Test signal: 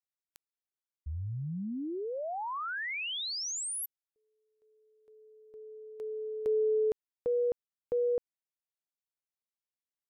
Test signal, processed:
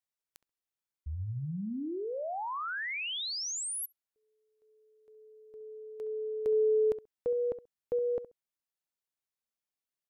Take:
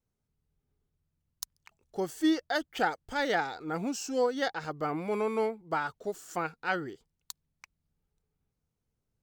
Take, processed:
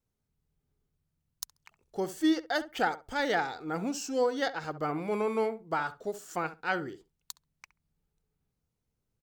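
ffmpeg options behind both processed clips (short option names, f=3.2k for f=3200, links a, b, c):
-filter_complex "[0:a]asplit=2[a][b];[b]adelay=67,lowpass=f=1.5k:p=1,volume=-13dB,asplit=2[c][d];[d]adelay=67,lowpass=f=1.5k:p=1,volume=0.15[e];[a][c][e]amix=inputs=3:normalize=0"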